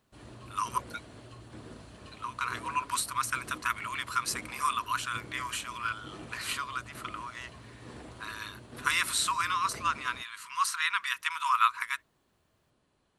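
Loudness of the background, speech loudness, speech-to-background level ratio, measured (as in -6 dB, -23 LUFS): -49.0 LUFS, -31.5 LUFS, 17.5 dB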